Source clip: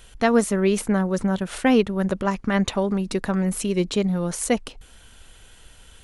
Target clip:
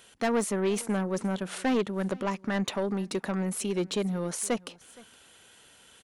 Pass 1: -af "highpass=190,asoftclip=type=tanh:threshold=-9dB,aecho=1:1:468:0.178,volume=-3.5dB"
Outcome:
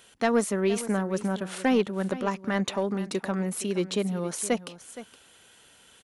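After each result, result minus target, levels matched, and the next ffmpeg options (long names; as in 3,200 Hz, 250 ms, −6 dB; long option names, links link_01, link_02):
soft clipping: distortion −11 dB; echo-to-direct +8 dB
-af "highpass=190,asoftclip=type=tanh:threshold=-17.5dB,aecho=1:1:468:0.178,volume=-3.5dB"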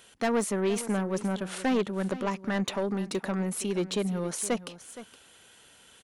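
echo-to-direct +8 dB
-af "highpass=190,asoftclip=type=tanh:threshold=-17.5dB,aecho=1:1:468:0.0708,volume=-3.5dB"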